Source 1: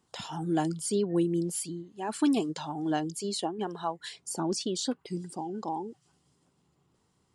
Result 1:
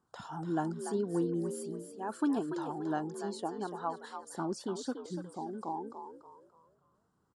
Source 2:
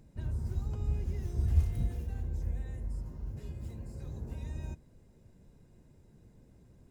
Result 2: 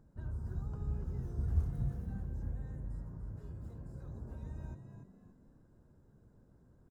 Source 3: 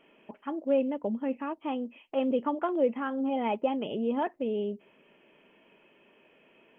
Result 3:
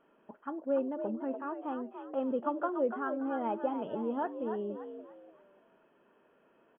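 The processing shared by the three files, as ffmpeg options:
-filter_complex "[0:a]highshelf=f=1800:t=q:w=3:g=-7,asplit=5[s0][s1][s2][s3][s4];[s1]adelay=289,afreqshift=59,volume=0.376[s5];[s2]adelay=578,afreqshift=118,volume=0.124[s6];[s3]adelay=867,afreqshift=177,volume=0.0407[s7];[s4]adelay=1156,afreqshift=236,volume=0.0135[s8];[s0][s5][s6][s7][s8]amix=inputs=5:normalize=0,volume=0.531"

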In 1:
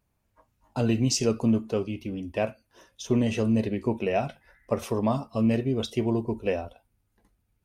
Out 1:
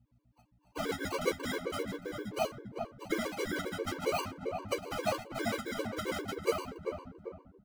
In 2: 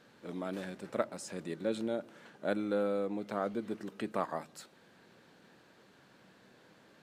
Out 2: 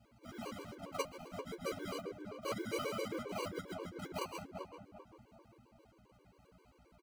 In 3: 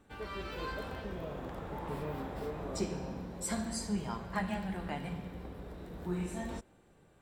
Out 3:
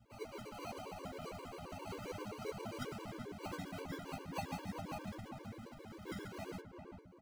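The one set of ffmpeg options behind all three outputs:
-filter_complex "[0:a]acrusher=samples=25:mix=1:aa=0.000001,highpass=91,lowshelf=f=380:g=-3.5,afftfilt=real='hypot(re,im)*cos(2*PI*random(0))':imag='hypot(re,im)*sin(2*PI*random(1))':win_size=512:overlap=0.75,highshelf=f=5200:g=-5.5,asplit=2[s0][s1];[s1]adelay=391,lowpass=f=1100:p=1,volume=0.562,asplit=2[s2][s3];[s3]adelay=391,lowpass=f=1100:p=1,volume=0.42,asplit=2[s4][s5];[s5]adelay=391,lowpass=f=1100:p=1,volume=0.42,asplit=2[s6][s7];[s7]adelay=391,lowpass=f=1100:p=1,volume=0.42,asplit=2[s8][s9];[s9]adelay=391,lowpass=f=1100:p=1,volume=0.42[s10];[s2][s4][s6][s8][s10]amix=inputs=5:normalize=0[s11];[s0][s11]amix=inputs=2:normalize=0,acrossover=split=340|3000[s12][s13][s14];[s12]acompressor=threshold=0.00501:ratio=4[s15];[s15][s13][s14]amix=inputs=3:normalize=0,aeval=exprs='val(0)+0.000447*(sin(2*PI*60*n/s)+sin(2*PI*2*60*n/s)/2+sin(2*PI*3*60*n/s)/3+sin(2*PI*4*60*n/s)/4+sin(2*PI*5*60*n/s)/5)':c=same,flanger=delay=8.9:depth=2.5:regen=19:speed=0.36:shape=sinusoidal,afftfilt=real='re*gt(sin(2*PI*7.5*pts/sr)*(1-2*mod(floor(b*sr/1024/300),2)),0)':imag='im*gt(sin(2*PI*7.5*pts/sr)*(1-2*mod(floor(b*sr/1024/300),2)),0)':win_size=1024:overlap=0.75,volume=2.51"

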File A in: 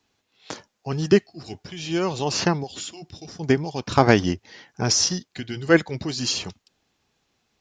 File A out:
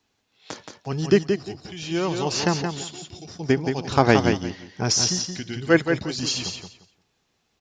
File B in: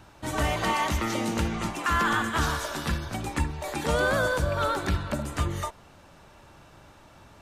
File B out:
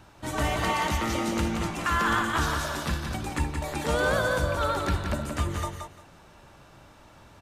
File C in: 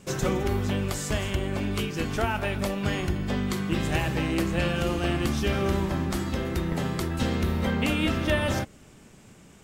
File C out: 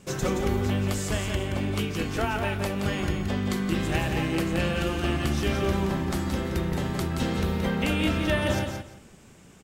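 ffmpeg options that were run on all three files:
-af "aecho=1:1:174|348|522:0.501|0.1|0.02,volume=0.891"

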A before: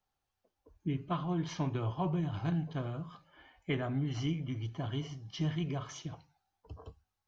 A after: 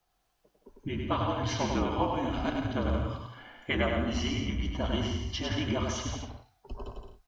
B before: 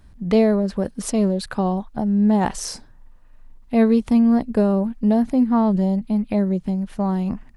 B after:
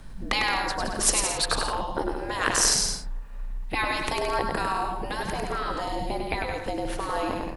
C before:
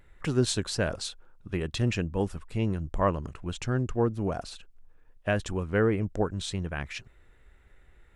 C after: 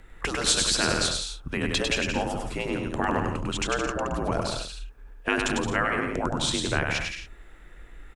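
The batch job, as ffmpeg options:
-af "afreqshift=-49,afftfilt=real='re*lt(hypot(re,im),0.158)':imag='im*lt(hypot(re,im),0.158)':win_size=1024:overlap=0.75,aecho=1:1:100|170|219|253.3|277.3:0.631|0.398|0.251|0.158|0.1,volume=2.66"

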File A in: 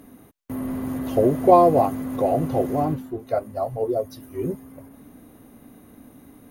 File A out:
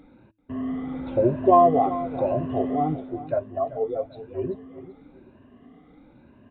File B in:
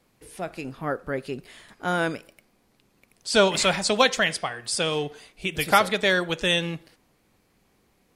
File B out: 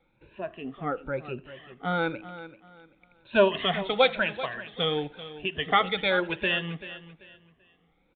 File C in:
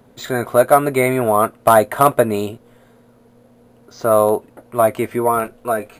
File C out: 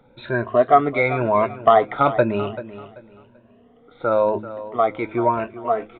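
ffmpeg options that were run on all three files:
-filter_complex "[0:a]afftfilt=real='re*pow(10,16/40*sin(2*PI*(1.4*log(max(b,1)*sr/1024/100)/log(2)-(1)*(pts-256)/sr)))':imag='im*pow(10,16/40*sin(2*PI*(1.4*log(max(b,1)*sr/1024/100)/log(2)-(1)*(pts-256)/sr)))':win_size=1024:overlap=0.75,aresample=8000,aresample=44100,bandreject=f=107.2:t=h:w=4,bandreject=f=214.4:t=h:w=4,bandreject=f=321.6:t=h:w=4,asplit=2[s0][s1];[s1]aecho=0:1:387|774|1161:0.188|0.0527|0.0148[s2];[s0][s2]amix=inputs=2:normalize=0,volume=0.501"

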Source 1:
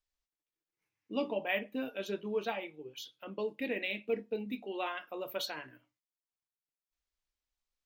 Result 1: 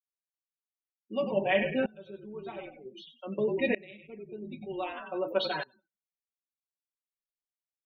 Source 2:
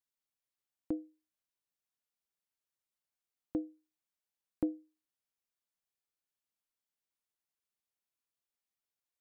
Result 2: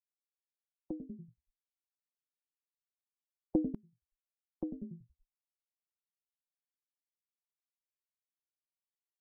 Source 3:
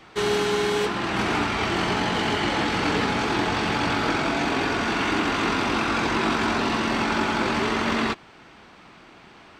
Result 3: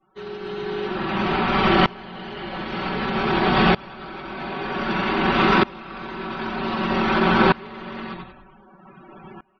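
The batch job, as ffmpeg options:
-filter_complex "[0:a]equalizer=f=2100:t=o:w=0.66:g=-3.5,asplit=2[s0][s1];[s1]asplit=6[s2][s3][s4][s5][s6][s7];[s2]adelay=94,afreqshift=-48,volume=0.398[s8];[s3]adelay=188,afreqshift=-96,volume=0.195[s9];[s4]adelay=282,afreqshift=-144,volume=0.0955[s10];[s5]adelay=376,afreqshift=-192,volume=0.0468[s11];[s6]adelay=470,afreqshift=-240,volume=0.0229[s12];[s7]adelay=564,afreqshift=-288,volume=0.0112[s13];[s8][s9][s10][s11][s12][s13]amix=inputs=6:normalize=0[s14];[s0][s14]amix=inputs=2:normalize=0,alimiter=limit=0.158:level=0:latency=1:release=57,highshelf=f=11000:g=-6,aecho=1:1:5.3:0.83,acrossover=split=4500[s15][s16];[s16]acompressor=threshold=0.00158:ratio=10[s17];[s15][s17]amix=inputs=2:normalize=0,afftdn=nr=35:nf=-44,aeval=exprs='val(0)*pow(10,-25*if(lt(mod(-0.53*n/s,1),2*abs(-0.53)/1000),1-mod(-0.53*n/s,1)/(2*abs(-0.53)/1000),(mod(-0.53*n/s,1)-2*abs(-0.53)/1000)/(1-2*abs(-0.53)/1000))/20)':c=same,volume=2.82"

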